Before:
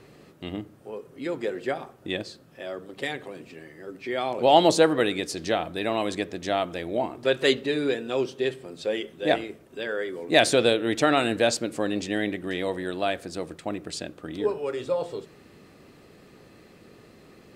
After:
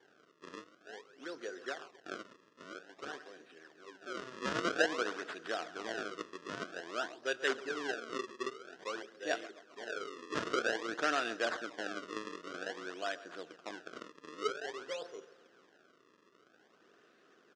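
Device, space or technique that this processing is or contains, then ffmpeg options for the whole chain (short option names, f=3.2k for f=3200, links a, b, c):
circuit-bent sampling toy: -filter_complex "[0:a]highshelf=f=8.3k:g=3.5,asplit=2[a][b];[b]adelay=135,lowpass=f=3.5k:p=1,volume=-16.5dB,asplit=2[c][d];[d]adelay=135,lowpass=f=3.5k:p=1,volume=0.55,asplit=2[e][f];[f]adelay=135,lowpass=f=3.5k:p=1,volume=0.55,asplit=2[g][h];[h]adelay=135,lowpass=f=3.5k:p=1,volume=0.55,asplit=2[i][j];[j]adelay=135,lowpass=f=3.5k:p=1,volume=0.55[k];[a][c][e][g][i][k]amix=inputs=6:normalize=0,acrusher=samples=33:mix=1:aa=0.000001:lfo=1:lforange=52.8:lforate=0.51,highpass=450,equalizer=f=550:t=q:w=4:g=-5,equalizer=f=870:t=q:w=4:g=-9,equalizer=f=1.5k:t=q:w=4:g=7,equalizer=f=2.2k:t=q:w=4:g=-7,equalizer=f=4.2k:t=q:w=4:g=-5,lowpass=f=5.9k:w=0.5412,lowpass=f=5.9k:w=1.3066,volume=-8.5dB"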